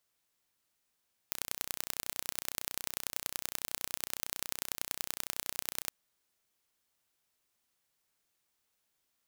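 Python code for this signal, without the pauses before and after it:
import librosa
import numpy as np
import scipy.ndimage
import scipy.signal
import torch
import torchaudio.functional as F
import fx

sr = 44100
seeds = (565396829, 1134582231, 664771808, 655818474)

y = fx.impulse_train(sr, length_s=4.58, per_s=30.9, accent_every=3, level_db=-5.5)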